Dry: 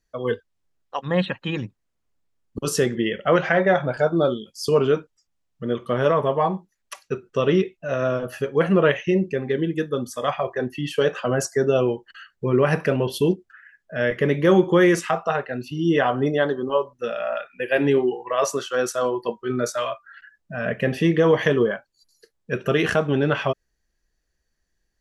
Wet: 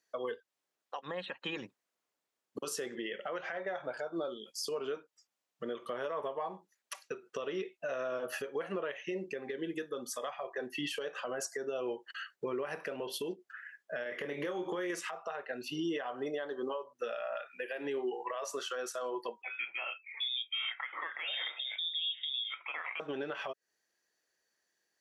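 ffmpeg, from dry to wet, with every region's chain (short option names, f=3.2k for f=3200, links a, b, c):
-filter_complex "[0:a]asettb=1/sr,asplit=3[a][b][c];[a]atrim=end=14.034[d];[b]atrim=start=14.03:end=14.9,asetpts=PTS-STARTPTS,afade=t=in:d=0.004:c=qsin,afade=t=out:st=0.866:d=0.004:c=qsin,acompressor=threshold=-22dB:ratio=4:attack=3.2:release=140:knee=1:detection=peak,asplit=2[e][f];[f]adelay=28,volume=-6.5dB[g];[e][g]amix=inputs=2:normalize=0,atrim=end_sample=38367[h];[c]atrim=start=14.896[i];[d][h]acrossfade=d=0.004:c1=hsin:c2=qsin[j];[j][i]acrossfade=d=0.004:c1=qsin:c2=hsin,asettb=1/sr,asplit=3[k][l][m];[k]atrim=end=19.424[n];[l]atrim=start=19.42:end=23,asetpts=PTS-STARTPTS,afade=t=in:d=0.004:c=qsin,afade=t=out:st=3.576:d=0.004:c=qsin,acrossover=split=1100[o][p];[o]adelay=770[q];[q][p]amix=inputs=2:normalize=0,atrim=end_sample=157878,lowpass=f=3.2k:t=q:w=0.5098,lowpass=f=3.2k:t=q:w=0.6013,lowpass=f=3.2k:t=q:w=0.9,lowpass=f=3.2k:t=q:w=2.563,afreqshift=-3800[r];[m]atrim=start=22.996[s];[n][r]acrossfade=d=0.004:c1=hsin:c2=qsin[t];[t][s]acrossfade=d=0.004:c1=qsin:c2=hsin,highpass=420,acompressor=threshold=-31dB:ratio=6,alimiter=level_in=3.5dB:limit=-24dB:level=0:latency=1:release=183,volume=-3.5dB"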